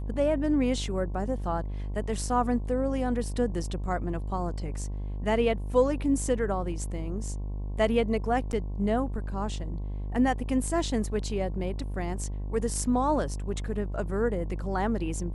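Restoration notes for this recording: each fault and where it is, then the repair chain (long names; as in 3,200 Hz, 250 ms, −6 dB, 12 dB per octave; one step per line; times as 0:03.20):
mains buzz 50 Hz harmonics 22 −33 dBFS
0:08.52–0:08.53: drop-out 9.2 ms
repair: hum removal 50 Hz, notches 22
repair the gap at 0:08.52, 9.2 ms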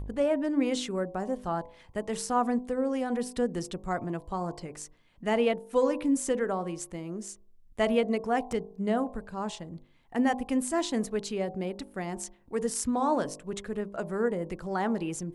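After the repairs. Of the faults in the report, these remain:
none of them is left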